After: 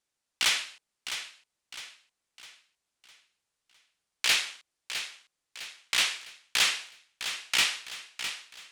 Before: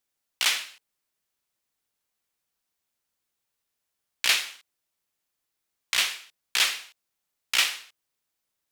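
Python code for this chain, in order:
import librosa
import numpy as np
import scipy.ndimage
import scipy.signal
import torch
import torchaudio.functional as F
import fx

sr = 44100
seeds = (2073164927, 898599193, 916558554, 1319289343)

y = scipy.signal.sosfilt(scipy.signal.butter(4, 10000.0, 'lowpass', fs=sr, output='sos'), x)
y = np.clip(y, -10.0 ** (-18.0 / 20.0), 10.0 ** (-18.0 / 20.0))
y = fx.echo_feedback(y, sr, ms=657, feedback_pct=43, wet_db=-10)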